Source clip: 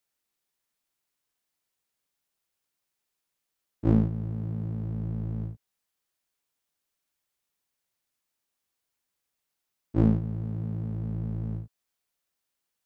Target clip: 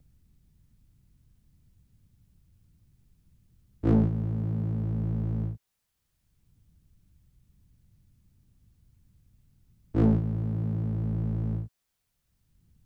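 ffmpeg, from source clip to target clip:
-filter_complex "[0:a]acrossover=split=150|260|940[s0][s1][s2][s3];[s0]acompressor=mode=upward:threshold=0.0224:ratio=2.5[s4];[s4][s1][s2][s3]amix=inputs=4:normalize=0,asoftclip=type=tanh:threshold=0.133,volume=1.41"

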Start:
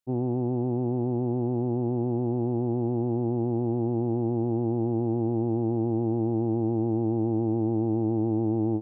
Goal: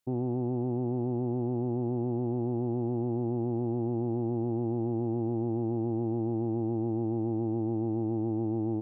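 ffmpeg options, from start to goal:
-af "alimiter=level_in=1.5:limit=0.0631:level=0:latency=1:release=32,volume=0.668,volume=1.68"

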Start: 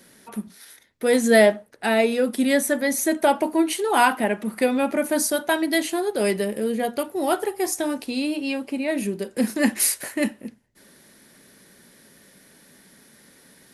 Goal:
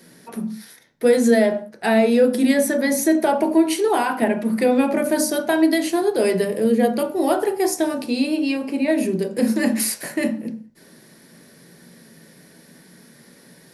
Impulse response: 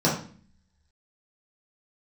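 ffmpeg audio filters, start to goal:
-filter_complex "[0:a]alimiter=limit=0.224:level=0:latency=1:release=112,asplit=2[s0][s1];[1:a]atrim=start_sample=2205,afade=t=out:st=0.25:d=0.01,atrim=end_sample=11466[s2];[s1][s2]afir=irnorm=-1:irlink=0,volume=0.126[s3];[s0][s3]amix=inputs=2:normalize=0"

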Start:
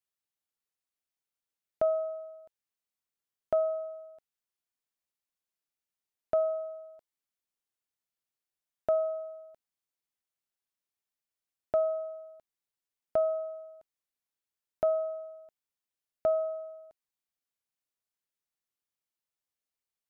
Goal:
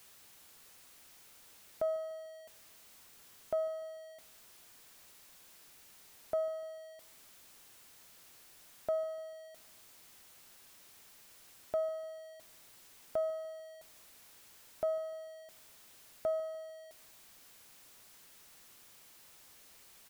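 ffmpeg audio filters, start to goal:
-af "aeval=exprs='val(0)+0.5*0.00668*sgn(val(0))':c=same,aecho=1:1:148|296|444|592:0.0841|0.0446|0.0236|0.0125,volume=0.447"

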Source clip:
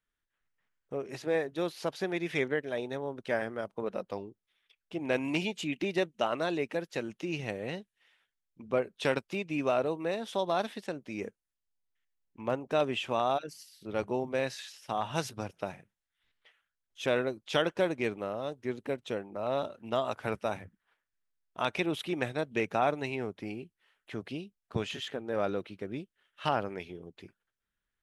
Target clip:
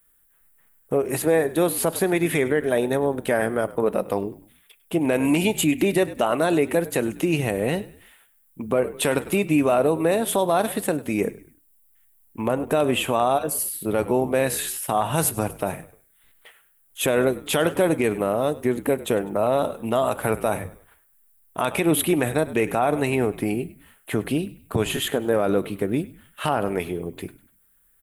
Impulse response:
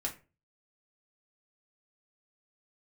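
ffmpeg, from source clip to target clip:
-filter_complex "[0:a]highshelf=f=2400:g=-8,asplit=2[s0][s1];[s1]acompressor=threshold=0.0126:ratio=6,volume=1[s2];[s0][s2]amix=inputs=2:normalize=0,aexciter=amount=14.9:drive=5.8:freq=8200,asplit=4[s3][s4][s5][s6];[s4]adelay=100,afreqshift=-53,volume=0.112[s7];[s5]adelay=200,afreqshift=-106,volume=0.0417[s8];[s6]adelay=300,afreqshift=-159,volume=0.0153[s9];[s3][s7][s8][s9]amix=inputs=4:normalize=0,asplit=2[s10][s11];[1:a]atrim=start_sample=2205[s12];[s11][s12]afir=irnorm=-1:irlink=0,volume=0.178[s13];[s10][s13]amix=inputs=2:normalize=0,alimiter=level_in=8.41:limit=0.891:release=50:level=0:latency=1,volume=0.355"

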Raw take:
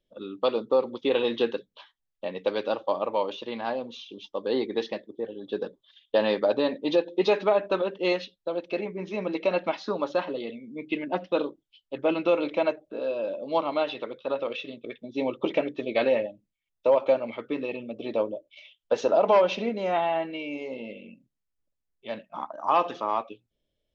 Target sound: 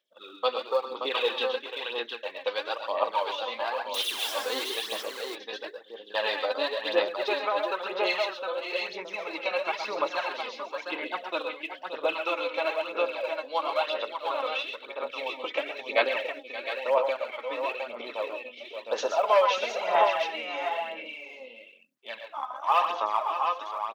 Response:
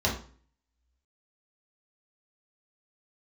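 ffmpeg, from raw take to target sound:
-filter_complex "[0:a]asettb=1/sr,asplit=3[s0][s1][s2];[s0]atrim=end=3.944[s3];[s1]atrim=start=3.94:end=4.64,asetpts=PTS-STARTPTS,afade=t=in:d=0.004:c=qsin,afade=t=out:st=0.696:d=0.004:c=qsin,aeval=exprs='val(0)+0.5*0.0316*sgn(val(0))':c=same[s4];[s2]atrim=start=4.636[s5];[s3][s4]acrossfade=d=0.004:c1=hsin:c2=qsin[s6];[s6][s5]acrossfade=d=0.004:c1=qsin:c2=hsin,asettb=1/sr,asplit=3[s7][s8][s9];[s7]atrim=end=6.904[s10];[s8]atrim=start=6.9:end=7.79,asetpts=PTS-STARTPTS,afade=t=in:d=0.004:c=qsin,afade=t=out:st=0.886:d=0.004:c=qsin,lowpass=f=2000:p=1[s11];[s9]atrim=start=7.786[s12];[s10][s11]acrossfade=d=0.004:c1=hsin:c2=qsin[s13];[s13][s12]acrossfade=d=0.004:c1=qsin:c2=hsin,aecho=1:1:116|132|576|711:0.355|0.335|0.316|0.562,aphaser=in_gain=1:out_gain=1:delay=4:decay=0.55:speed=1:type=sinusoidal,highpass=920,volume=1.19"

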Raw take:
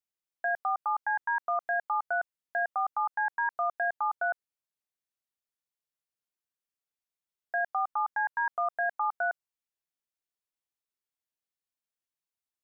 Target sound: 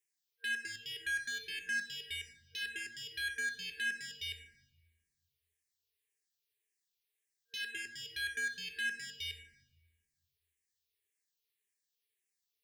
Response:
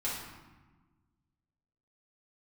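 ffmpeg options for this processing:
-filter_complex "[0:a]asoftclip=type=tanh:threshold=0.0119,lowshelf=f=370:t=q:w=3:g=-9.5,asplit=2[s0][s1];[1:a]atrim=start_sample=2205[s2];[s1][s2]afir=irnorm=-1:irlink=0,volume=0.447[s3];[s0][s3]amix=inputs=2:normalize=0,afftfilt=real='re*(1-between(b*sr/4096,470,1600))':imag='im*(1-between(b*sr/4096,470,1600))':win_size=4096:overlap=0.75,asplit=2[s4][s5];[s5]afreqshift=-1.8[s6];[s4][s6]amix=inputs=2:normalize=1,volume=2.11"

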